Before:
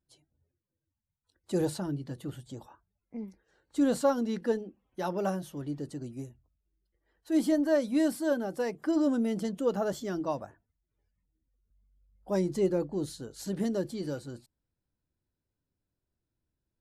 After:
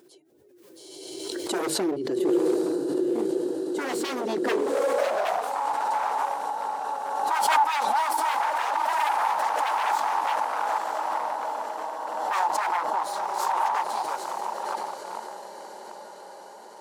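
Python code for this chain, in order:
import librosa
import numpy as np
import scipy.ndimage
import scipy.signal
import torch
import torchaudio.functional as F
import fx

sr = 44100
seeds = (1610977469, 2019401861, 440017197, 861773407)

p1 = x + fx.echo_diffused(x, sr, ms=900, feedback_pct=63, wet_db=-4.5, dry=0)
p2 = 10.0 ** (-31.0 / 20.0) * (np.abs((p1 / 10.0 ** (-31.0 / 20.0) + 3.0) % 4.0 - 2.0) - 1.0)
p3 = fx.filter_sweep_highpass(p2, sr, from_hz=370.0, to_hz=870.0, start_s=4.51, end_s=5.59, q=7.3)
p4 = fx.pre_swell(p3, sr, db_per_s=29.0)
y = F.gain(torch.from_numpy(p4), 3.5).numpy()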